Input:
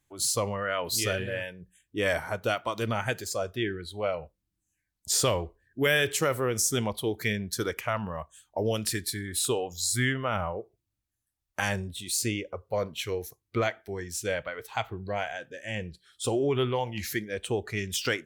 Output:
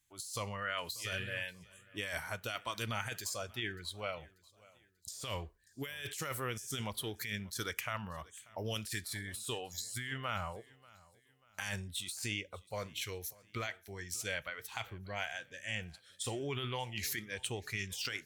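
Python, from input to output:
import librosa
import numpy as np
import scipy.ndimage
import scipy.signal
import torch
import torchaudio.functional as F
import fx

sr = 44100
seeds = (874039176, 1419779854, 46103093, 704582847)

p1 = fx.tone_stack(x, sr, knobs='5-5-5')
p2 = fx.over_compress(p1, sr, threshold_db=-43.0, ratio=-1.0)
p3 = p2 + fx.echo_feedback(p2, sr, ms=588, feedback_pct=40, wet_db=-23.0, dry=0)
y = F.gain(torch.from_numpy(p3), 4.0).numpy()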